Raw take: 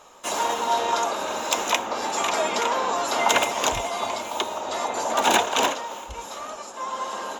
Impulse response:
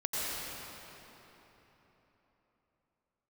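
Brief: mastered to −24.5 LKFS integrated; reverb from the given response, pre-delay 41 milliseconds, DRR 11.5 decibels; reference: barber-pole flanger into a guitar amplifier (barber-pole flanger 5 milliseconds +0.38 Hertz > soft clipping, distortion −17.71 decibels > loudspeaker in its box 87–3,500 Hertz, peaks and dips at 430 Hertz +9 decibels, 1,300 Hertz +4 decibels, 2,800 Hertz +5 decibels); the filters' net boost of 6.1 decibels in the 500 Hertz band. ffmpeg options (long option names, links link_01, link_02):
-filter_complex "[0:a]equalizer=frequency=500:width_type=o:gain=3.5,asplit=2[link_01][link_02];[1:a]atrim=start_sample=2205,adelay=41[link_03];[link_02][link_03]afir=irnorm=-1:irlink=0,volume=-19dB[link_04];[link_01][link_04]amix=inputs=2:normalize=0,asplit=2[link_05][link_06];[link_06]adelay=5,afreqshift=0.38[link_07];[link_05][link_07]amix=inputs=2:normalize=1,asoftclip=threshold=-16dB,highpass=87,equalizer=frequency=430:width_type=q:width=4:gain=9,equalizer=frequency=1300:width_type=q:width=4:gain=4,equalizer=frequency=2800:width_type=q:width=4:gain=5,lowpass=frequency=3500:width=0.5412,lowpass=frequency=3500:width=1.3066,volume=1dB"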